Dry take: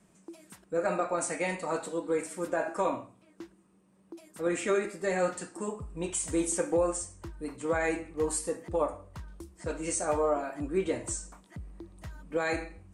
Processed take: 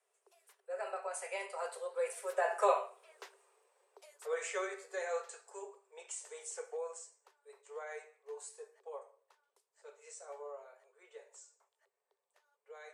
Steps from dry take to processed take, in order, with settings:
source passing by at 0:03.19, 21 m/s, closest 8.7 metres
Chebyshev high-pass filter 390 Hz, order 10
level +5.5 dB

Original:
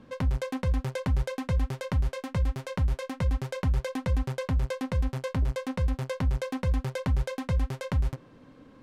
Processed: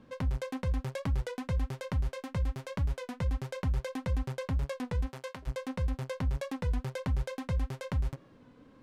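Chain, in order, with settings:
0:05.05–0:05.46: high-pass filter 290 Hz → 1,100 Hz 6 dB per octave
wow of a warped record 33 1/3 rpm, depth 100 cents
level −4.5 dB

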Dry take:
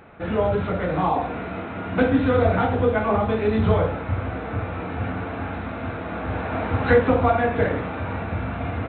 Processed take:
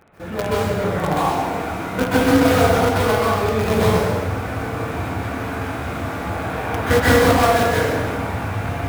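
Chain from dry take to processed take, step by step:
in parallel at −8.5 dB: log-companded quantiser 2 bits
on the sum: dense smooth reverb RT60 1.4 s, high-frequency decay 0.95×, pre-delay 115 ms, DRR −7.5 dB
level −7 dB

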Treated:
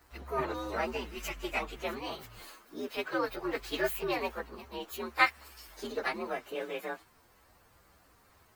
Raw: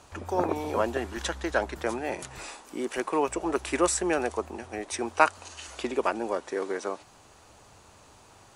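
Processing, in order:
partials spread apart or drawn together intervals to 123%
dynamic equaliser 2,600 Hz, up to +6 dB, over −49 dBFS, Q 0.97
level −4 dB

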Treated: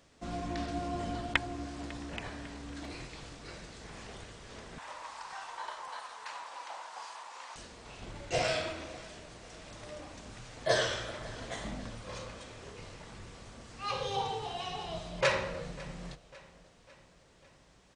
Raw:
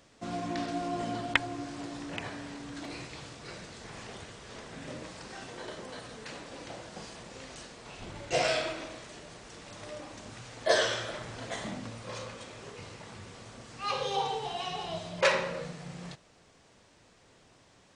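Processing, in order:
sub-octave generator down 2 octaves, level −1 dB
0:04.78–0:07.56: high-pass with resonance 950 Hz, resonance Q 4.9
repeating echo 549 ms, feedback 54%, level −20.5 dB
level −3 dB

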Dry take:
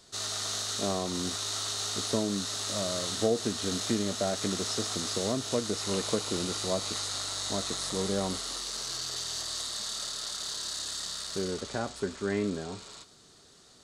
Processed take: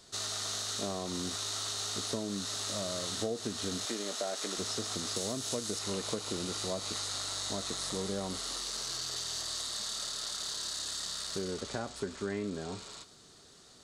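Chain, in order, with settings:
0:03.85–0:04.58: high-pass filter 380 Hz 12 dB per octave
0:05.16–0:05.79: high-shelf EQ 5,600 Hz +9 dB
downward compressor 3 to 1, threshold −33 dBFS, peak gain reduction 9 dB

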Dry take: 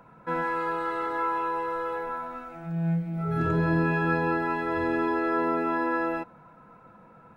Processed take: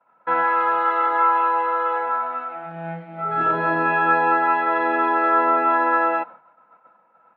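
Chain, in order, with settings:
loudspeaker in its box 360–3,600 Hz, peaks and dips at 410 Hz −4 dB, 600 Hz +6 dB, 850 Hz +8 dB, 1,300 Hz +7 dB, 1,900 Hz +4 dB, 3,000 Hz +4 dB
downward expander −38 dBFS
level +4.5 dB

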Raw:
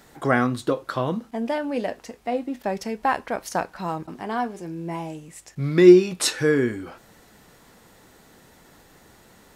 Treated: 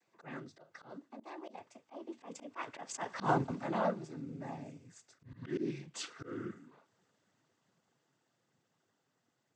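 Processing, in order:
source passing by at 0:03.28, 57 m/s, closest 12 metres
cochlear-implant simulation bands 16
volume swells 131 ms
level +1.5 dB

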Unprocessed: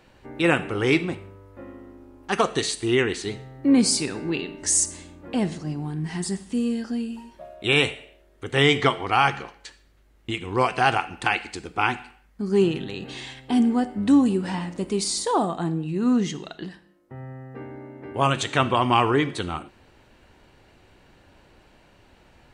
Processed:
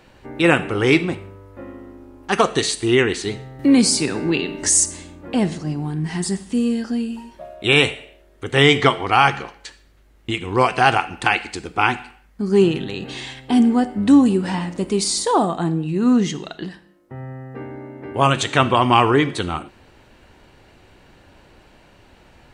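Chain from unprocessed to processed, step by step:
0:03.59–0:04.69: multiband upward and downward compressor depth 40%
level +5 dB

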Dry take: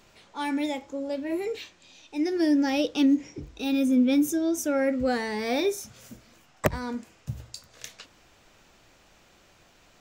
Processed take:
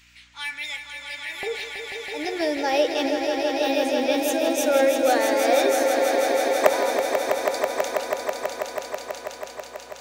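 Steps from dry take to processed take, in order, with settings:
high-pass with resonance 2,100 Hz, resonance Q 2, from 0:01.43 630 Hz
mains hum 60 Hz, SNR 33 dB
echo that builds up and dies away 163 ms, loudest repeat 5, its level −7 dB
level +3 dB

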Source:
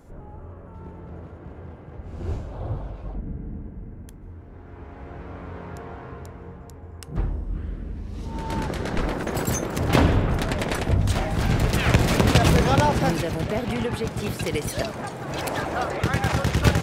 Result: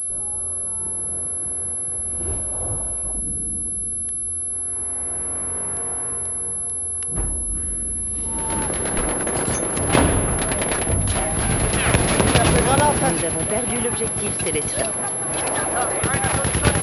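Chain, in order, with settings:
bass and treble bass −5 dB, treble +2 dB
switching amplifier with a slow clock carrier 11,000 Hz
level +3.5 dB

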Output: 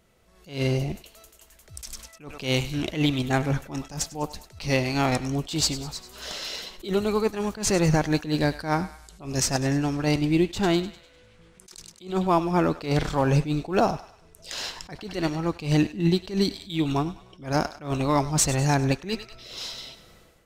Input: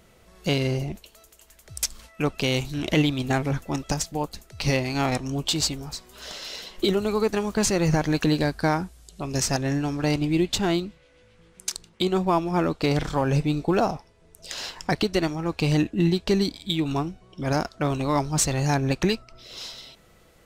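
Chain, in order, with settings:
feedback echo with a high-pass in the loop 100 ms, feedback 51%, high-pass 810 Hz, level −14.5 dB
automatic gain control gain up to 11.5 dB
level that may rise only so fast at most 160 dB per second
level −8 dB

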